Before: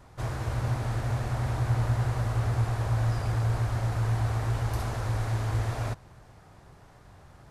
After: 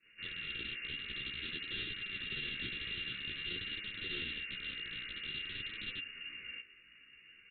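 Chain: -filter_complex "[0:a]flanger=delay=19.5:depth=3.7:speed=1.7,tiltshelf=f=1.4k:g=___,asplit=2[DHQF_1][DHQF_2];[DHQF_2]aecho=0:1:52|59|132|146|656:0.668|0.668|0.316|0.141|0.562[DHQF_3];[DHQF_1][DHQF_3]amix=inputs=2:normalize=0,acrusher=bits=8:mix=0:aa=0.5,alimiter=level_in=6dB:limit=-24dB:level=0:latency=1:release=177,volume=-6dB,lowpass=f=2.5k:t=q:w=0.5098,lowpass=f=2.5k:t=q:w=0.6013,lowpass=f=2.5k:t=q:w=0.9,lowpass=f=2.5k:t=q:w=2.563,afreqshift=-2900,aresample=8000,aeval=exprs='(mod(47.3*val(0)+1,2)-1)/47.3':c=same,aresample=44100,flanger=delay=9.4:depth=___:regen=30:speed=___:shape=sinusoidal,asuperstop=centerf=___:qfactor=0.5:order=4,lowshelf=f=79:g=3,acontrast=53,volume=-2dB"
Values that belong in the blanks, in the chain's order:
-9, 7.8, 0.52, 820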